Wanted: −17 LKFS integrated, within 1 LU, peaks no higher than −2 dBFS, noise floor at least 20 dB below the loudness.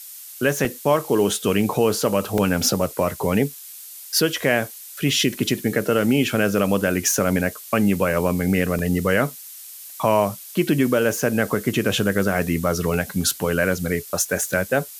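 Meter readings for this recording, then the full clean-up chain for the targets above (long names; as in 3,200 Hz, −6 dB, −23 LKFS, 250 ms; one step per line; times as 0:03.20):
number of dropouts 6; longest dropout 1.4 ms; background noise floor −39 dBFS; target noise floor −41 dBFS; integrated loudness −21.0 LKFS; sample peak −4.5 dBFS; target loudness −17.0 LKFS
→ repair the gap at 0:00.65/0:01.61/0:02.38/0:05.19/0:08.79/0:12.94, 1.4 ms
broadband denoise 6 dB, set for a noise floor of −39 dBFS
level +4 dB
brickwall limiter −2 dBFS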